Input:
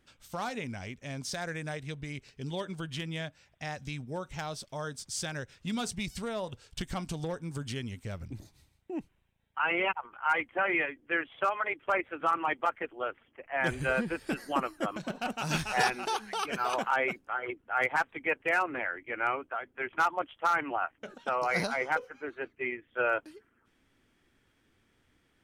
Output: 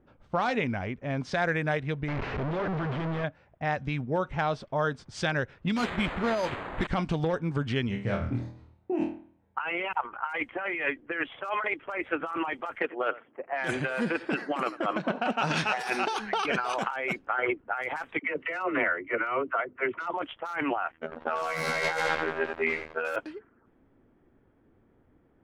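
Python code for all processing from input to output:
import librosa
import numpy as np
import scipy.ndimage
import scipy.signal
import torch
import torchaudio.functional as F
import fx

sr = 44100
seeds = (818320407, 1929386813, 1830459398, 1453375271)

y = fx.chain(x, sr, fx.clip_1bit(),
    fx.resample_linear(factor=4), at=(2.08, 3.24))
y = fx.chain(y, sr, fx.comb(ms=3.3, depth=0.34),
    fx.quant_dither(seeds[0], bits=6, dither='triangular'),
    fx.resample_bad(factor=8, down='filtered', up='hold'), at=(5.76, 6.87))
y = fx.chain(y, sr, fx.highpass(hz=51.0, slope=12),
    fx.high_shelf(hz=5400.0, db=3.5),
    fx.room_flutter(wall_m=4.3, rt60_s=0.47), at=(7.88, 9.58))
y = fx.chain(y, sr, fx.highpass(hz=170.0, slope=12),
    fx.echo_single(ms=91, db=-22.5),
    fx.transformer_sat(knee_hz=1300.0), at=(12.8, 16.1))
y = fx.chain(y, sr, fx.lowpass(hz=5600.0, slope=12),
    fx.notch_comb(f0_hz=820.0),
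    fx.dispersion(late='lows', ms=55.0, hz=450.0), at=(18.19, 20.14))
y = fx.chain(y, sr, fx.robotise(hz=80.3),
    fx.echo_crushed(ms=89, feedback_pct=80, bits=7, wet_db=-3.5), at=(20.92, 23.16))
y = fx.env_lowpass(y, sr, base_hz=710.0, full_db=-24.5)
y = fx.low_shelf(y, sr, hz=230.0, db=-5.0)
y = fx.over_compress(y, sr, threshold_db=-36.0, ratio=-1.0)
y = y * 10.0 ** (7.5 / 20.0)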